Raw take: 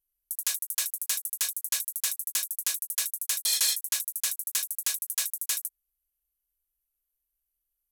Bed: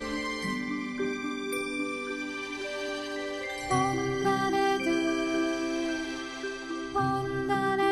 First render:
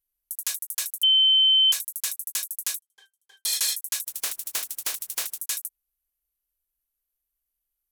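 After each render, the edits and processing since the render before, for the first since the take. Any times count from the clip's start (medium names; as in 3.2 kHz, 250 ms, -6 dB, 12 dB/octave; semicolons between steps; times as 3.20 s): 1.03–1.72 s: bleep 3.08 kHz -15 dBFS; 2.81–3.44 s: pitch-class resonator G, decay 0.11 s; 4.06–5.39 s: spectral contrast reduction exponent 0.33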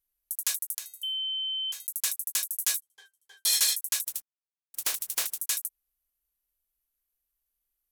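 0.78–1.87 s: feedback comb 290 Hz, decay 0.45 s, harmonics odd, mix 80%; 2.52–3.64 s: doubling 12 ms -3 dB; 4.22–4.74 s: mute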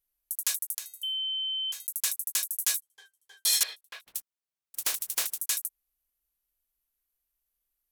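3.63–4.15 s: distance through air 400 m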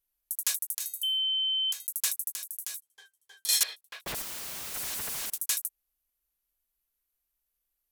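0.80–1.73 s: treble shelf 4.5 kHz +10 dB; 2.32–3.49 s: compression 5:1, threshold -34 dBFS; 4.06–5.30 s: one-bit comparator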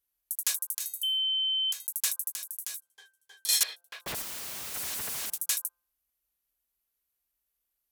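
high-pass 42 Hz; de-hum 173.4 Hz, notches 9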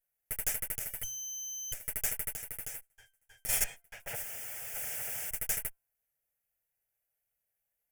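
comb filter that takes the minimum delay 8.6 ms; static phaser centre 1.1 kHz, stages 6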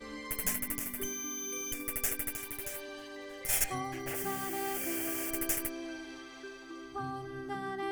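add bed -11 dB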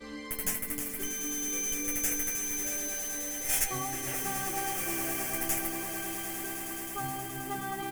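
doubling 14 ms -6 dB; echo with a slow build-up 106 ms, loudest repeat 8, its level -13 dB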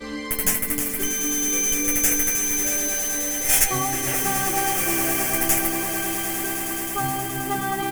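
trim +10.5 dB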